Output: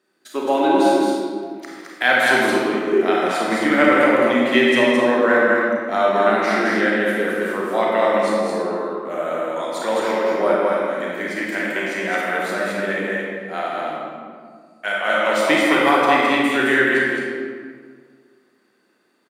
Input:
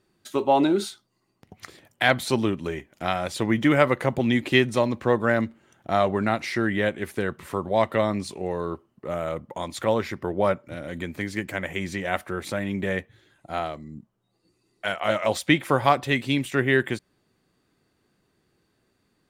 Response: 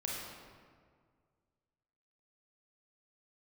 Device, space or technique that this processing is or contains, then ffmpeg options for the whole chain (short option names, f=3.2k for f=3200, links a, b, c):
stadium PA: -filter_complex "[0:a]highpass=f=230:w=0.5412,highpass=f=230:w=1.3066,equalizer=f=1.6k:t=o:w=0.6:g=5,aecho=1:1:157.4|215.7:0.251|0.708[a];[1:a]atrim=start_sample=2205[b];[a][b]afir=irnorm=-1:irlink=0,asettb=1/sr,asplit=3[c][d][e];[c]atrim=end=2.924[f];[d]atrim=start=2.92:end=3.32,asetpts=PTS-STARTPTS,afade=t=in:d=0.004:c=qsin,afade=t=out:st=0.396:d=0.004:c=qsin,equalizer=f=390:t=o:w=0.58:g=11.5[g];[e]atrim=start=3.316[h];[f][g]acrossfade=d=0.004:c1=hsin:c2=qsin[i];[i][h]acrossfade=d=0.004:c1=qsin:c2=hsin,volume=1.5dB"